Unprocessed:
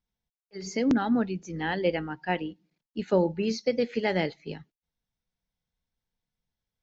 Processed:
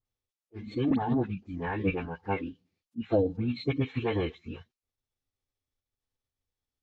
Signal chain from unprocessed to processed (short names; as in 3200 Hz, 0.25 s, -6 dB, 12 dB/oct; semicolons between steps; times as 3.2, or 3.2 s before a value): notch 1800 Hz, Q 8.9; dispersion highs, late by 52 ms, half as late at 2400 Hz; formant-preserving pitch shift -10.5 st; gain -1.5 dB